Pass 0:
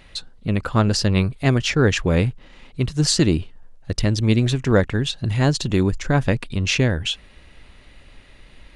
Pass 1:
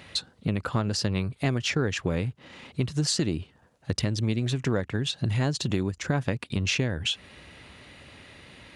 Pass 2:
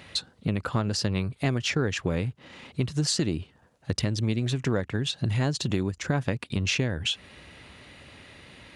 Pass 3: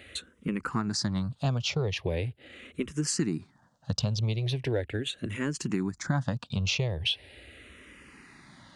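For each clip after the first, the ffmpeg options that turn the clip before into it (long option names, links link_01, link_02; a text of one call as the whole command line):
ffmpeg -i in.wav -af "highpass=frequency=78:width=0.5412,highpass=frequency=78:width=1.3066,acompressor=threshold=-27dB:ratio=5,volume=3dB" out.wav
ffmpeg -i in.wav -af anull out.wav
ffmpeg -i in.wav -filter_complex "[0:a]asplit=2[link_01][link_02];[link_02]afreqshift=-0.4[link_03];[link_01][link_03]amix=inputs=2:normalize=1" out.wav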